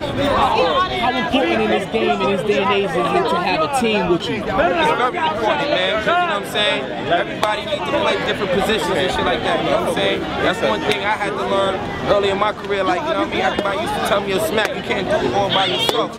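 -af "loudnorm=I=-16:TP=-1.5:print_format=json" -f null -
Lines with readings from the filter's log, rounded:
"input_i" : "-17.9",
"input_tp" : "-1.6",
"input_lra" : "1.2",
"input_thresh" : "-27.9",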